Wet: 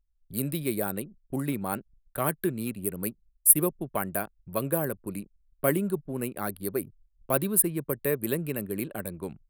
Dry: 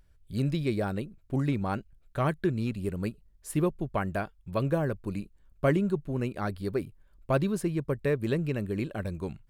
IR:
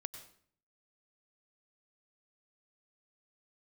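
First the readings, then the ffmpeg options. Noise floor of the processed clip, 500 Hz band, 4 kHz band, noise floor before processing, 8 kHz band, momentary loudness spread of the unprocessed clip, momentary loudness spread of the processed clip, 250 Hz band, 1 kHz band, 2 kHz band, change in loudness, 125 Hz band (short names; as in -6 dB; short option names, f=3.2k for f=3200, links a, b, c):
-70 dBFS, 0.0 dB, -0.5 dB, -62 dBFS, +21.0 dB, 9 LU, 13 LU, -1.5 dB, 0.0 dB, 0.0 dB, +2.5 dB, -5.0 dB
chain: -filter_complex "[0:a]agate=range=-9dB:threshold=-55dB:ratio=16:detection=peak,anlmdn=0.0251,acrossover=split=150[a][b];[a]acompressor=threshold=-50dB:ratio=6[c];[b]aexciter=amount=15.4:drive=9.1:freq=9.4k[d];[c][d]amix=inputs=2:normalize=0"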